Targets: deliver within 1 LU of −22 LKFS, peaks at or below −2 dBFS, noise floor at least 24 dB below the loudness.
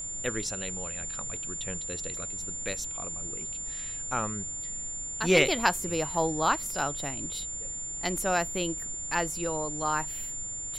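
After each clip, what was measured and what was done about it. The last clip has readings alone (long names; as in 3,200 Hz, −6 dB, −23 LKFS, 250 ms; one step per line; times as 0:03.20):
interfering tone 7,200 Hz; level of the tone −34 dBFS; background noise floor −37 dBFS; target noise floor −54 dBFS; integrated loudness −30.0 LKFS; sample peak −8.0 dBFS; target loudness −22.0 LKFS
→ notch filter 7,200 Hz, Q 30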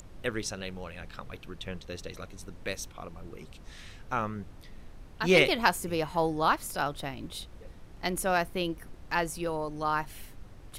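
interfering tone none found; background noise floor −49 dBFS; target noise floor −55 dBFS
→ noise reduction from a noise print 6 dB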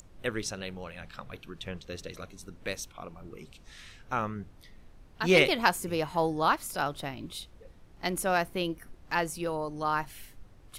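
background noise floor −55 dBFS; integrated loudness −30.5 LKFS; sample peak −8.0 dBFS; target loudness −22.0 LKFS
→ level +8.5 dB
brickwall limiter −2 dBFS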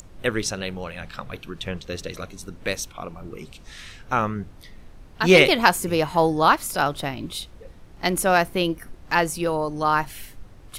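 integrated loudness −22.0 LKFS; sample peak −2.0 dBFS; background noise floor −46 dBFS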